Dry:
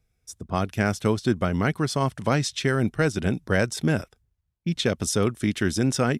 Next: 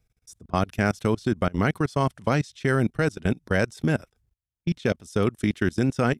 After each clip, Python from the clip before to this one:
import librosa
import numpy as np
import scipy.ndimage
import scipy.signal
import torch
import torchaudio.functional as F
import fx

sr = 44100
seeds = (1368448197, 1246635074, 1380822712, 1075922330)

y = fx.level_steps(x, sr, step_db=24)
y = y * librosa.db_to_amplitude(3.0)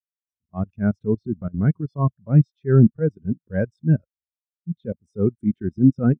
y = fx.transient(x, sr, attack_db=-10, sustain_db=6)
y = fx.spectral_expand(y, sr, expansion=2.5)
y = y * librosa.db_to_amplitude(5.0)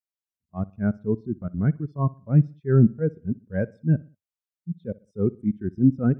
y = fx.echo_feedback(x, sr, ms=62, feedback_pct=38, wet_db=-22.0)
y = y * librosa.db_to_amplitude(-3.0)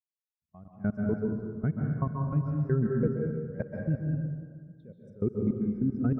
y = fx.level_steps(x, sr, step_db=22)
y = fx.rev_plate(y, sr, seeds[0], rt60_s=1.7, hf_ratio=0.55, predelay_ms=120, drr_db=0.0)
y = y * librosa.db_to_amplitude(-3.5)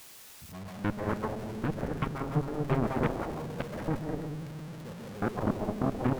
y = x + 0.5 * 10.0 ** (-36.5 / 20.0) * np.sign(x)
y = fx.cheby_harmonics(y, sr, harmonics=(4, 6, 7, 8), levels_db=(-11, -12, -10, -13), full_scale_db=-14.5)
y = y * librosa.db_to_amplitude(-3.5)